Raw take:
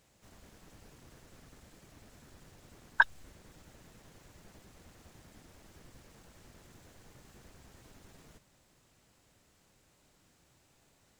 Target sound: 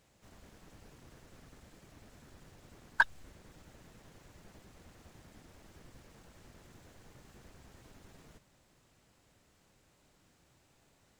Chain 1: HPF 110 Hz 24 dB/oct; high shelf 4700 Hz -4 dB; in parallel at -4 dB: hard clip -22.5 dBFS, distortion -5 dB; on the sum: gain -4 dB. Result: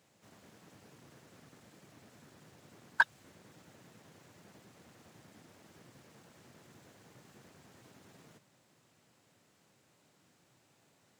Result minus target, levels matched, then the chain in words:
125 Hz band -3.0 dB
high shelf 4700 Hz -4 dB; in parallel at -4 dB: hard clip -22.5 dBFS, distortion -5 dB; on the sum: gain -4 dB

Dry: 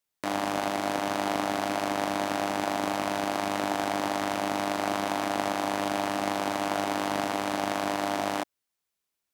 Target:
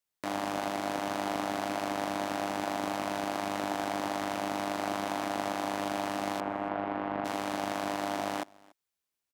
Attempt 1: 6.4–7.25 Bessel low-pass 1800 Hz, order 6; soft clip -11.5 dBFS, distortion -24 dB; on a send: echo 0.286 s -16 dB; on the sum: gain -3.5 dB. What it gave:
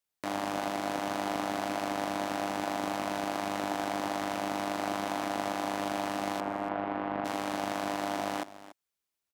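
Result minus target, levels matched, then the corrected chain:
echo-to-direct +9 dB
6.4–7.25 Bessel low-pass 1800 Hz, order 6; soft clip -11.5 dBFS, distortion -24 dB; on a send: echo 0.286 s -25 dB; on the sum: gain -3.5 dB

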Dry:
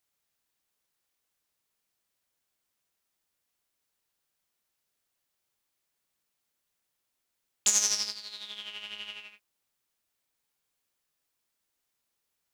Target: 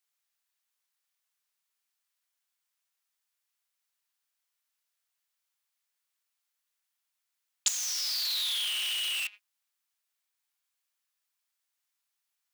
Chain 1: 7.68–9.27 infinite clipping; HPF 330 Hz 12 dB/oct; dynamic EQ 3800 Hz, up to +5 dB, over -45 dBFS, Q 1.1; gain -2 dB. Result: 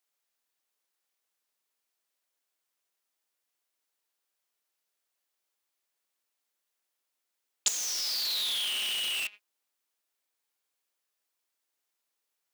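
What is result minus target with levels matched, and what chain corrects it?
250 Hz band +17.0 dB
7.68–9.27 infinite clipping; HPF 1000 Hz 12 dB/oct; dynamic EQ 3800 Hz, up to +5 dB, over -45 dBFS, Q 1.1; gain -2 dB

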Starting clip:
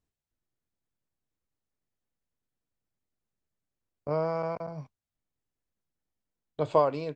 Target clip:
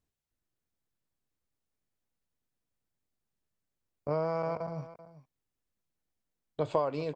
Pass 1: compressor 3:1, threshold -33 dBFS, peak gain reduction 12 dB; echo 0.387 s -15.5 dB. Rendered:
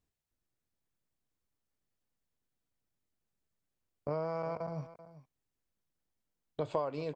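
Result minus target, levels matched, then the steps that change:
compressor: peak gain reduction +4.5 dB
change: compressor 3:1, threshold -26 dBFS, peak gain reduction 7.5 dB

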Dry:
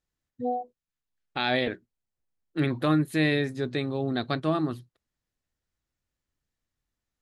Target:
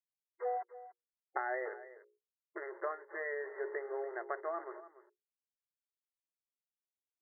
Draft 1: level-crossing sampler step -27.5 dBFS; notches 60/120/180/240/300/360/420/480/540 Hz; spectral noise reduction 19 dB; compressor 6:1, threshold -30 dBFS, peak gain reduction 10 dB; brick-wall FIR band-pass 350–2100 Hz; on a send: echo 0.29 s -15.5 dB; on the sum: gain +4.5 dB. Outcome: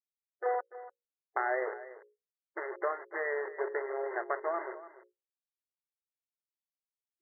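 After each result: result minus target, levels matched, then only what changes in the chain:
level-crossing sampler: distortion +12 dB; compressor: peak gain reduction -6 dB
change: level-crossing sampler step -37 dBFS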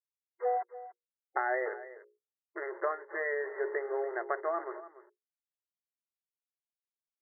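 compressor: peak gain reduction -6 dB
change: compressor 6:1, threshold -37 dBFS, peak gain reduction 16 dB

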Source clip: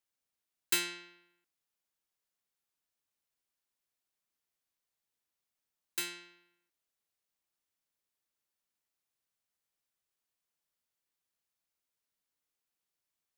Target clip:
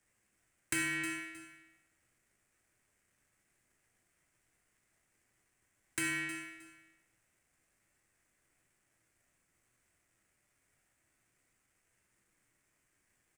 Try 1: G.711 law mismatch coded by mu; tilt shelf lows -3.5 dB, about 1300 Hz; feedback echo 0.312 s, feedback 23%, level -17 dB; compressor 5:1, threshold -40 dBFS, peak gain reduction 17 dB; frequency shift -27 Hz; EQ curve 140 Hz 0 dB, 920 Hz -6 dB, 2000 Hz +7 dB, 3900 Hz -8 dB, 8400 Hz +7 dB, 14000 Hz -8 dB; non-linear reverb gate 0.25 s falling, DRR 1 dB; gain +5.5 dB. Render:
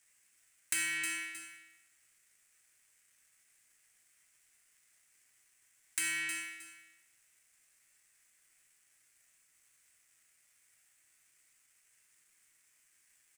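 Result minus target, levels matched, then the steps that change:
1000 Hz band -4.0 dB
change: tilt shelf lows +7 dB, about 1300 Hz

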